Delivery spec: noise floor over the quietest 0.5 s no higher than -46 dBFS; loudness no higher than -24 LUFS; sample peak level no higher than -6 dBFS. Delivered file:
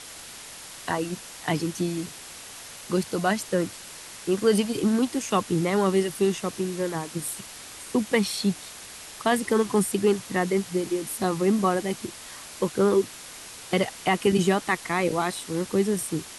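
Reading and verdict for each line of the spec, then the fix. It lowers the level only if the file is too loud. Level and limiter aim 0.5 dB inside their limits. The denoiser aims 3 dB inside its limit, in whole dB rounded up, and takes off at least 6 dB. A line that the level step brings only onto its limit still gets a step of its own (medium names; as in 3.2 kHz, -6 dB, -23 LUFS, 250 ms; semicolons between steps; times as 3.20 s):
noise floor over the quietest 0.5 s -42 dBFS: fail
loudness -25.5 LUFS: pass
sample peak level -8.0 dBFS: pass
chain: noise reduction 7 dB, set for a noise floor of -42 dBFS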